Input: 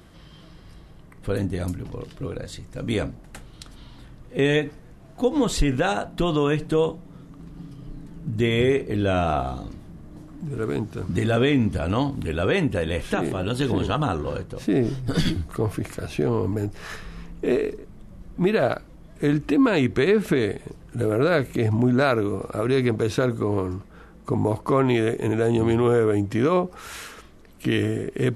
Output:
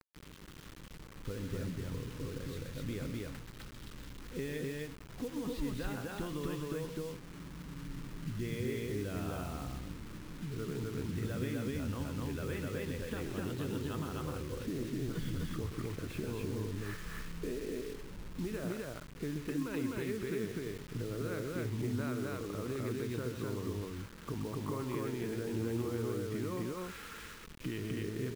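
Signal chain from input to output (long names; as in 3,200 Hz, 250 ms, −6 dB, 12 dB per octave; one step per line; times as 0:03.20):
downward compressor 4 to 1, threshold −29 dBFS, peak gain reduction 12.5 dB
high-frequency loss of the air 270 metres
on a send: loudspeakers that aren't time-aligned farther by 44 metres −9 dB, 87 metres −1 dB
on the sum: bit reduction 7 bits
parametric band 700 Hz −10 dB 0.57 octaves
level −7.5 dB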